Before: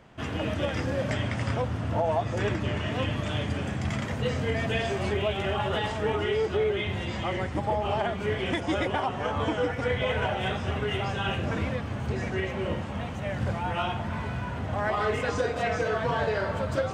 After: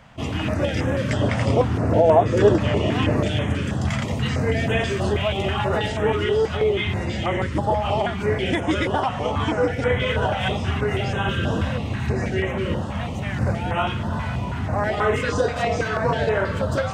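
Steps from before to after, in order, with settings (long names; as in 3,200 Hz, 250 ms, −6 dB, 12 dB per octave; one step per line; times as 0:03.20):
0:01.21–0:03.28: parametric band 430 Hz +9.5 dB 1.4 octaves
0:11.26–0:12.11: healed spectral selection 1,200–4,600 Hz both
notch on a step sequencer 6.2 Hz 370–4,600 Hz
level +7 dB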